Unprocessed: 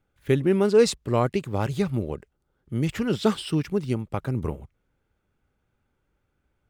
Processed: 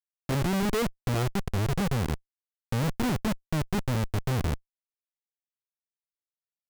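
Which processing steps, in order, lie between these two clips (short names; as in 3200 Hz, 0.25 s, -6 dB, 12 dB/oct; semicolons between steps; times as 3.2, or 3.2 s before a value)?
RIAA curve playback; Schmitt trigger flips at -19 dBFS; gain -6.5 dB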